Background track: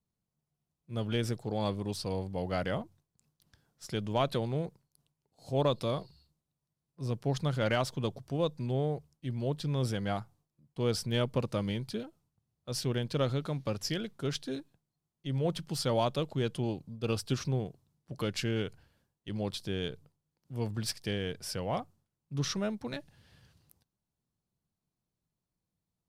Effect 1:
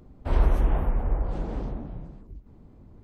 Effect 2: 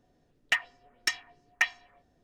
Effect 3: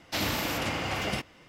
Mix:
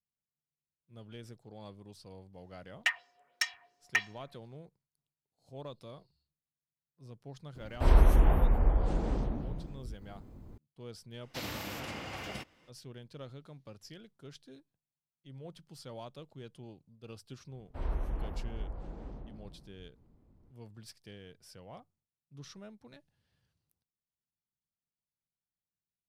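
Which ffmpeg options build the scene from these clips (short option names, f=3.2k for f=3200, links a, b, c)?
-filter_complex "[1:a]asplit=2[a][b];[0:a]volume=-16.5dB[c];[2:a]highpass=630[d];[a]crystalizer=i=1.5:c=0[e];[d]atrim=end=2.23,asetpts=PTS-STARTPTS,volume=-3.5dB,afade=t=in:d=0.004:c=hsin,afade=t=out:st=2.226:d=0.004:c=hsin,adelay=2340[f];[e]atrim=end=3.03,asetpts=PTS-STARTPTS,volume=-0.5dB,afade=t=in:d=0.004:c=hsin,afade=t=out:st=3.026:d=0.004:c=hsin,adelay=7550[g];[3:a]atrim=end=1.48,asetpts=PTS-STARTPTS,volume=-10.5dB,afade=t=in:d=0.004:c=hsin,afade=t=out:st=1.476:d=0.004:c=hsin,adelay=494802S[h];[b]atrim=end=3.03,asetpts=PTS-STARTPTS,volume=-13.5dB,afade=t=in:d=0.004:c=hsin,afade=t=out:st=3.026:d=0.004:c=hsin,adelay=17490[i];[c][f][g][h][i]amix=inputs=5:normalize=0"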